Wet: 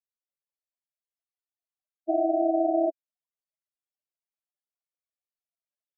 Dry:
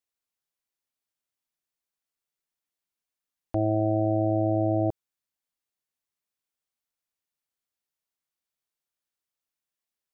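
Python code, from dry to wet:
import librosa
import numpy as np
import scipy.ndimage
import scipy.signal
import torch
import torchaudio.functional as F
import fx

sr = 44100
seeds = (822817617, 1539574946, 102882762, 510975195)

y = scipy.signal.sosfilt(scipy.signal.butter(2, 230.0, 'highpass', fs=sr, output='sos'), x)
y = fx.peak_eq(y, sr, hz=640.0, db=3.0, octaves=0.69)
y = fx.spec_topn(y, sr, count=4)
y = fx.stretch_grains(y, sr, factor=0.59, grain_ms=64.0)
y = fx.granulator(y, sr, seeds[0], grain_ms=100.0, per_s=20.0, spray_ms=13.0, spread_st=0)
y = F.gain(torch.from_numpy(y), 6.0).numpy()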